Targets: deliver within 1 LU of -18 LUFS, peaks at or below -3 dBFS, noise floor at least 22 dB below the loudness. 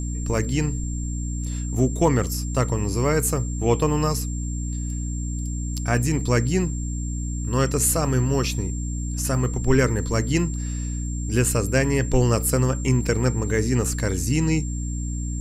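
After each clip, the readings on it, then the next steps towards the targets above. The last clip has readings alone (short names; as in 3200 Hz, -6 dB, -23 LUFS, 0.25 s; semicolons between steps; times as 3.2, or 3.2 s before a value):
hum 60 Hz; harmonics up to 300 Hz; hum level -25 dBFS; steady tone 7400 Hz; tone level -37 dBFS; loudness -23.5 LUFS; peak -6.5 dBFS; loudness target -18.0 LUFS
-> de-hum 60 Hz, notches 5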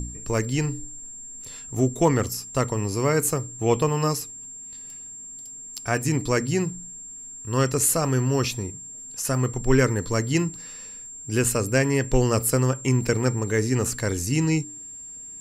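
hum none; steady tone 7400 Hz; tone level -37 dBFS
-> notch 7400 Hz, Q 30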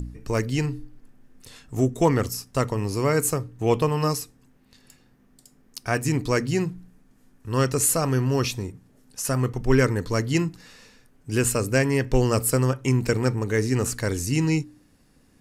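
steady tone none; loudness -24.0 LUFS; peak -7.5 dBFS; loudness target -18.0 LUFS
-> gain +6 dB; limiter -3 dBFS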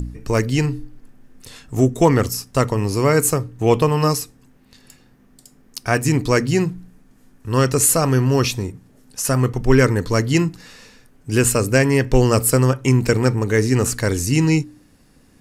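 loudness -18.0 LUFS; peak -3.0 dBFS; noise floor -53 dBFS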